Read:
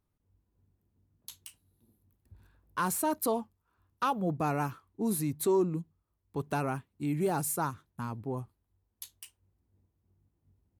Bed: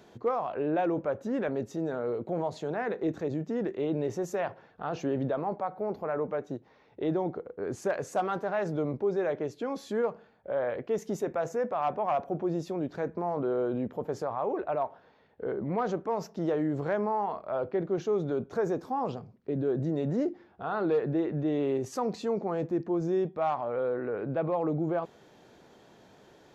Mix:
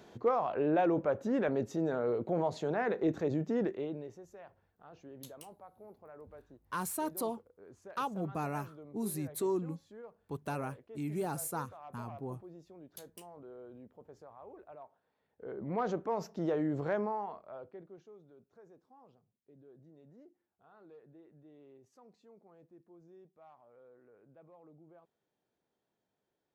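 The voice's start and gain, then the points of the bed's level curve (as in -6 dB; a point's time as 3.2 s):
3.95 s, -6.0 dB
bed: 3.64 s -0.5 dB
4.25 s -21 dB
15.03 s -21 dB
15.8 s -3.5 dB
16.98 s -3.5 dB
18.25 s -29.5 dB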